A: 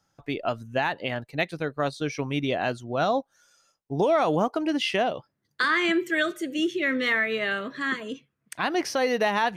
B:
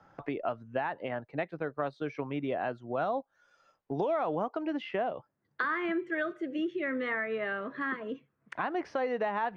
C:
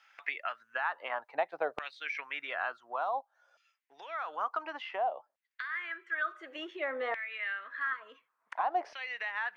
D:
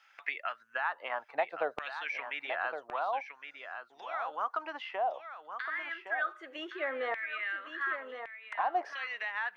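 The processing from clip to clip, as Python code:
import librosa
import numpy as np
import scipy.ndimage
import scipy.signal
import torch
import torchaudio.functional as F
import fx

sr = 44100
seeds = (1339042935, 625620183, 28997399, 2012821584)

y1 = scipy.signal.sosfilt(scipy.signal.butter(2, 1400.0, 'lowpass', fs=sr, output='sos'), x)
y1 = fx.low_shelf(y1, sr, hz=320.0, db=-8.0)
y1 = fx.band_squash(y1, sr, depth_pct=70)
y1 = y1 * 10.0 ** (-4.0 / 20.0)
y2 = fx.filter_lfo_highpass(y1, sr, shape='saw_down', hz=0.56, low_hz=630.0, high_hz=2600.0, q=3.3)
y2 = fx.dynamic_eq(y2, sr, hz=1900.0, q=1.0, threshold_db=-39.0, ratio=4.0, max_db=-6)
y2 = fx.rider(y2, sr, range_db=5, speed_s=0.5)
y3 = y2 + 10.0 ** (-8.5 / 20.0) * np.pad(y2, (int(1114 * sr / 1000.0), 0))[:len(y2)]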